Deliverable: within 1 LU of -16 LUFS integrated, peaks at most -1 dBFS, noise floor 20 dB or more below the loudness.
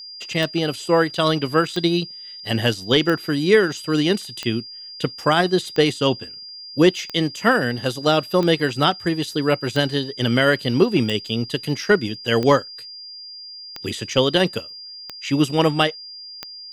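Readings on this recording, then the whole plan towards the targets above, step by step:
clicks 13; steady tone 4800 Hz; tone level -35 dBFS; loudness -20.0 LUFS; peak -4.0 dBFS; loudness target -16.0 LUFS
-> de-click; notch 4800 Hz, Q 30; gain +4 dB; limiter -1 dBFS

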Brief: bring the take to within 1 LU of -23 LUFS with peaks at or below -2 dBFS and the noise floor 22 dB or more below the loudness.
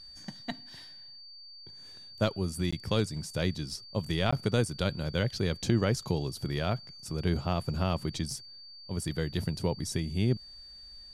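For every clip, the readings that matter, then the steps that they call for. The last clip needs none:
dropouts 2; longest dropout 15 ms; steady tone 4600 Hz; tone level -47 dBFS; loudness -32.0 LUFS; peak -14.5 dBFS; loudness target -23.0 LUFS
-> interpolate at 2.71/4.31, 15 ms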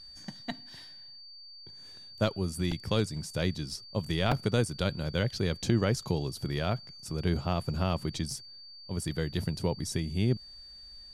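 dropouts 0; steady tone 4600 Hz; tone level -47 dBFS
-> notch 4600 Hz, Q 30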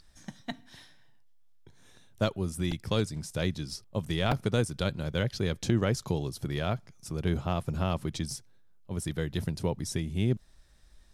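steady tone none; loudness -32.0 LUFS; peak -13.5 dBFS; loudness target -23.0 LUFS
-> gain +9 dB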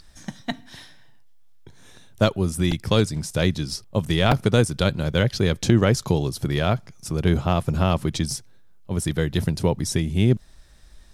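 loudness -23.0 LUFS; peak -4.5 dBFS; noise floor -48 dBFS

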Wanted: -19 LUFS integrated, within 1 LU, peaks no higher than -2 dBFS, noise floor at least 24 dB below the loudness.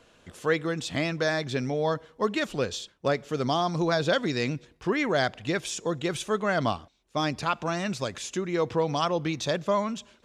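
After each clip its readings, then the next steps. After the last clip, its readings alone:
loudness -28.0 LUFS; peak -11.5 dBFS; loudness target -19.0 LUFS
-> gain +9 dB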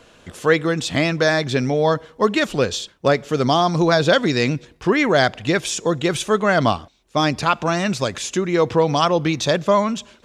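loudness -19.0 LUFS; peak -2.5 dBFS; noise floor -52 dBFS

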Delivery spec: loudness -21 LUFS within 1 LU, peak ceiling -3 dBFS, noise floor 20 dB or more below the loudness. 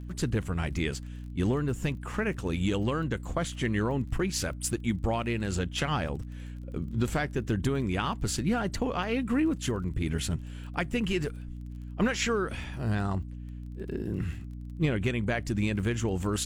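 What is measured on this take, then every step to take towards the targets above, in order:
ticks 26/s; hum 60 Hz; harmonics up to 300 Hz; hum level -37 dBFS; loudness -30.5 LUFS; peak -14.0 dBFS; loudness target -21.0 LUFS
-> de-click; notches 60/120/180/240/300 Hz; gain +9.5 dB

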